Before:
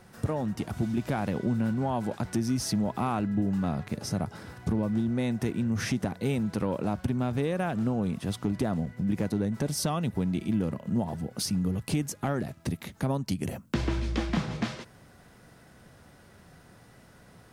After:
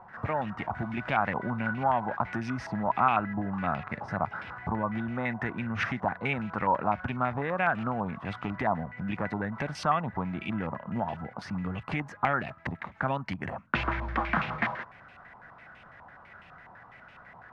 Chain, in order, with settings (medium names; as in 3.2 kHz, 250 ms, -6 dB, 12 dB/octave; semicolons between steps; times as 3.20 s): resonant low shelf 560 Hz -7 dB, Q 1.5; step-sequenced low-pass 12 Hz 970–2600 Hz; trim +2 dB